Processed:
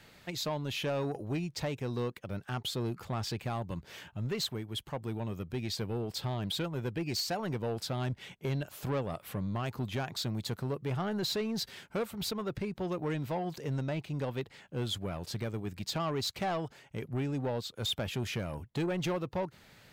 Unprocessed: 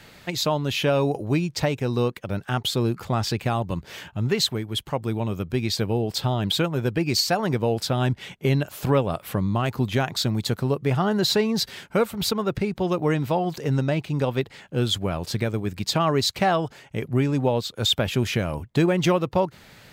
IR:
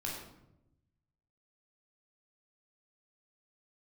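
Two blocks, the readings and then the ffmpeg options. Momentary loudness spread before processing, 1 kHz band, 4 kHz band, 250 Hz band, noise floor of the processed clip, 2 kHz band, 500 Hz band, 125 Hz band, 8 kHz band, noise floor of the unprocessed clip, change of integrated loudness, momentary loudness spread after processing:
6 LU, -12.0 dB, -11.0 dB, -11.5 dB, -59 dBFS, -11.5 dB, -11.5 dB, -11.0 dB, -10.5 dB, -50 dBFS, -11.5 dB, 5 LU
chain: -af "asoftclip=type=tanh:threshold=-18dB,volume=-9dB"

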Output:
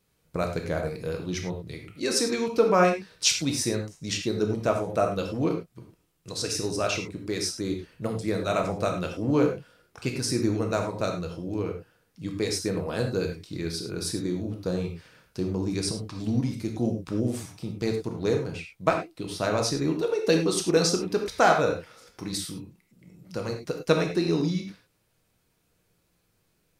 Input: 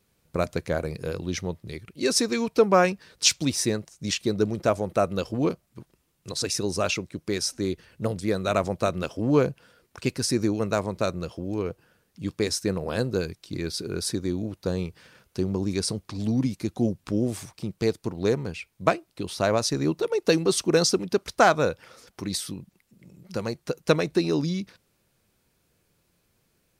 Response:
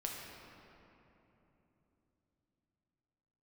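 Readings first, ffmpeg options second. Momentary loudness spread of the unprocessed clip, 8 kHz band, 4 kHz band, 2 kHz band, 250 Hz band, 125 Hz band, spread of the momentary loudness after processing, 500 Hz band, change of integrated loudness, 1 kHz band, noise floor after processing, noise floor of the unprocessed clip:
12 LU, -2.0 dB, -1.5 dB, -1.5 dB, -1.0 dB, -0.5 dB, 11 LU, -1.0 dB, -1.0 dB, -0.5 dB, -71 dBFS, -70 dBFS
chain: -filter_complex "[1:a]atrim=start_sample=2205,afade=t=out:st=0.16:d=0.01,atrim=end_sample=7497[a];[0:a][a]afir=irnorm=-1:irlink=0"

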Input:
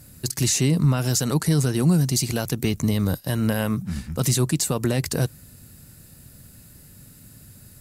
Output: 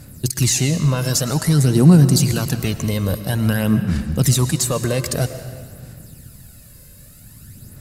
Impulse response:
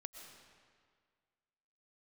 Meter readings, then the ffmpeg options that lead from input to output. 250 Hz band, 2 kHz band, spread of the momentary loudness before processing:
+5.0 dB, +4.0 dB, 6 LU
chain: -filter_complex "[0:a]aphaser=in_gain=1:out_gain=1:delay=1.9:decay=0.53:speed=0.51:type=sinusoidal,asplit=2[a][b];[1:a]atrim=start_sample=2205[c];[b][c]afir=irnorm=-1:irlink=0,volume=7dB[d];[a][d]amix=inputs=2:normalize=0,volume=-4.5dB"

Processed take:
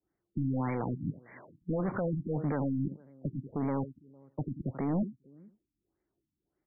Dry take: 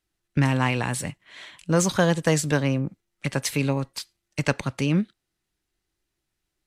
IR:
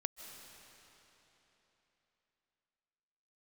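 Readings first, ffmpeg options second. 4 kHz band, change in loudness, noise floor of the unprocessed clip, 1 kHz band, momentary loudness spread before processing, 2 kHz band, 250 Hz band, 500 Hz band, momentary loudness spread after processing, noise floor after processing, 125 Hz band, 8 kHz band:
under -40 dB, -9.5 dB, -81 dBFS, -10.0 dB, 14 LU, -20.0 dB, -7.0 dB, -10.0 dB, 10 LU, under -85 dBFS, -9.5 dB, under -40 dB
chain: -filter_complex "[0:a]equalizer=f=380:w=0.38:g=11,asoftclip=type=tanh:threshold=-1.5dB,asplit=2[a][b];[b]aecho=0:1:85:0.112[c];[a][c]amix=inputs=2:normalize=0,alimiter=limit=-14dB:level=0:latency=1:release=17,adynamicequalizer=threshold=0.0112:dfrequency=1800:dqfactor=0.79:tfrequency=1800:tqfactor=0.79:attack=5:release=100:ratio=0.375:range=1.5:mode=cutabove:tftype=bell,highpass=46,asplit=2[d][e];[e]adelay=454.8,volume=-27dB,highshelf=f=4k:g=-10.2[f];[d][f]amix=inputs=2:normalize=0,aeval=exprs='0.141*(abs(mod(val(0)/0.141+3,4)-2)-1)':c=same,afftfilt=real='re*lt(b*sr/1024,300*pow(2400/300,0.5+0.5*sin(2*PI*1.7*pts/sr)))':imag='im*lt(b*sr/1024,300*pow(2400/300,0.5+0.5*sin(2*PI*1.7*pts/sr)))':win_size=1024:overlap=0.75,volume=-7.5dB"

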